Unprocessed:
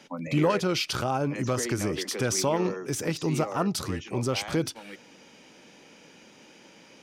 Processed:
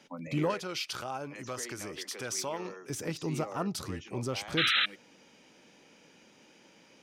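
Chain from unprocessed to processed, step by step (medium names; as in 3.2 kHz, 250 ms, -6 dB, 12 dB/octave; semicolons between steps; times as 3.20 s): 0.54–2.90 s: bass shelf 420 Hz -11.5 dB; 4.57–4.86 s: painted sound noise 1.2–4.1 kHz -20 dBFS; trim -6.5 dB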